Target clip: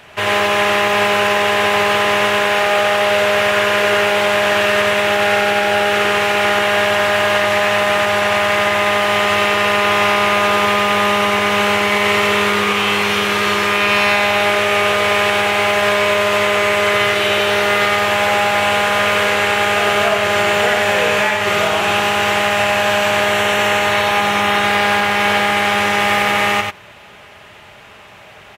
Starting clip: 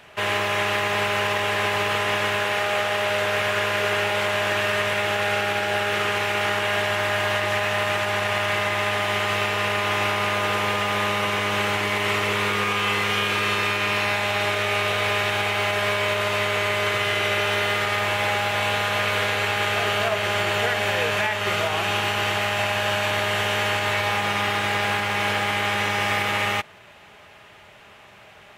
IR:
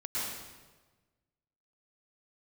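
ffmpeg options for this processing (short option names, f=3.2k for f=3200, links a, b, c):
-filter_complex "[0:a]asettb=1/sr,asplit=3[a][b][c];[a]atrim=end=23.244[d];[b]atrim=start=23.24:end=24.64,asetpts=PTS-STARTPTS,afade=t=in:d=0.004:c=qsin,afade=t=out:st=1.396:d=0.004:c=qsin,bandreject=f=4.8k:w=10[e];[c]atrim=start=24.636[f];[d][e]acrossfade=d=0.004:c1=hsin:c2=qsin[g];[g][f]acrossfade=d=0.004:c1=qsin:c2=hsin,aecho=1:1:93:0.631,volume=6dB"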